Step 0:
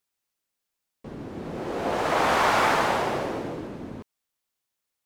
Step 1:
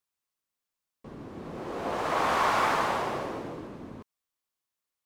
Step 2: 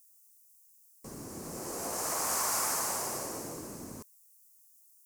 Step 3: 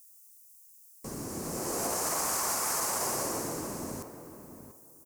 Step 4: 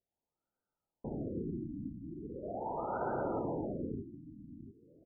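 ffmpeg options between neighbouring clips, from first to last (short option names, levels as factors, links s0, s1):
-af "equalizer=f=1100:w=4.8:g=5.5,volume=0.531"
-af "acompressor=threshold=0.0112:ratio=2,aexciter=amount=9.3:drive=9.6:freq=5400,volume=0.841"
-filter_complex "[0:a]alimiter=level_in=1.41:limit=0.0631:level=0:latency=1:release=24,volume=0.708,asplit=2[s0][s1];[s1]adelay=690,lowpass=f=1700:p=1,volume=0.316,asplit=2[s2][s3];[s3]adelay=690,lowpass=f=1700:p=1,volume=0.2,asplit=2[s4][s5];[s5]adelay=690,lowpass=f=1700:p=1,volume=0.2[s6];[s0][s2][s4][s6]amix=inputs=4:normalize=0,volume=1.88"
-af "asuperstop=centerf=1100:order=4:qfactor=4.2,afftfilt=real='re*lt(b*sr/1024,310*pow(1600/310,0.5+0.5*sin(2*PI*0.4*pts/sr)))':imag='im*lt(b*sr/1024,310*pow(1600/310,0.5+0.5*sin(2*PI*0.4*pts/sr)))':win_size=1024:overlap=0.75,volume=1.12"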